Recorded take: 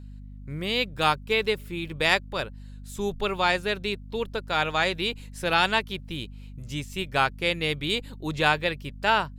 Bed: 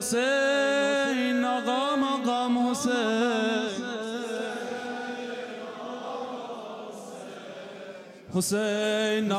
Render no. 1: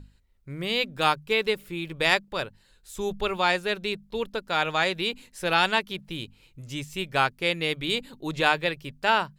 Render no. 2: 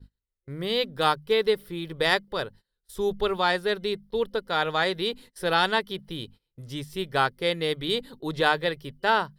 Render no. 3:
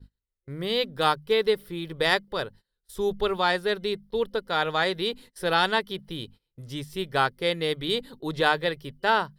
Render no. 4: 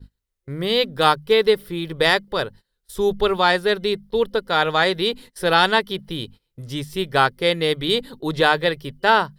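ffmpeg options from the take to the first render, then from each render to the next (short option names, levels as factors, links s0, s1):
-af "bandreject=f=50:t=h:w=6,bandreject=f=100:t=h:w=6,bandreject=f=150:t=h:w=6,bandreject=f=200:t=h:w=6,bandreject=f=250:t=h:w=6"
-af "agate=range=0.0708:threshold=0.00447:ratio=16:detection=peak,superequalizer=7b=1.58:12b=0.398:15b=0.355"
-af anull
-af "volume=2.11,alimiter=limit=0.708:level=0:latency=1"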